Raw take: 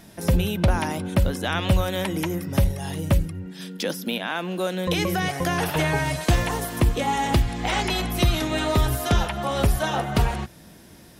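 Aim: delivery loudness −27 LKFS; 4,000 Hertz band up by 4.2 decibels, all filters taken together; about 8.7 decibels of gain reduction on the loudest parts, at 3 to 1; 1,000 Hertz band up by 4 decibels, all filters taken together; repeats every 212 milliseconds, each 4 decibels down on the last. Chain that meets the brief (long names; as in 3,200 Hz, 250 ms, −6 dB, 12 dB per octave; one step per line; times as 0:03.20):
parametric band 1,000 Hz +5 dB
parametric band 4,000 Hz +5 dB
downward compressor 3 to 1, threshold −26 dBFS
repeating echo 212 ms, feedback 63%, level −4 dB
level −0.5 dB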